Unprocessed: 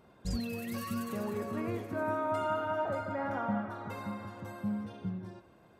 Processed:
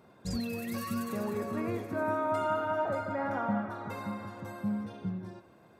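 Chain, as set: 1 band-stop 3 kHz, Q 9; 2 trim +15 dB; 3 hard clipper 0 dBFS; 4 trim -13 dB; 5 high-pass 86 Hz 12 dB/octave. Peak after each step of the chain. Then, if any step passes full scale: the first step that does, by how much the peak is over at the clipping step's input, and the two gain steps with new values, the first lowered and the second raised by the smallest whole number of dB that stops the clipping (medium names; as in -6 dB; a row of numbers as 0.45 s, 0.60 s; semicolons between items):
-20.5 dBFS, -5.5 dBFS, -5.5 dBFS, -18.5 dBFS, -18.5 dBFS; nothing clips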